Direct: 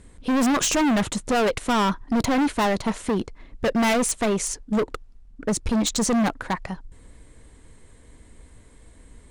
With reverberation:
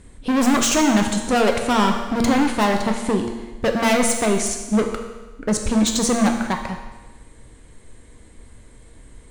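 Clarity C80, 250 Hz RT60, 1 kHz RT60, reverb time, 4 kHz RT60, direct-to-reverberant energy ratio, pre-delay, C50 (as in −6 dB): 8.0 dB, 1.2 s, 1.2 s, 1.2 s, 1.2 s, 3.5 dB, 9 ms, 6.0 dB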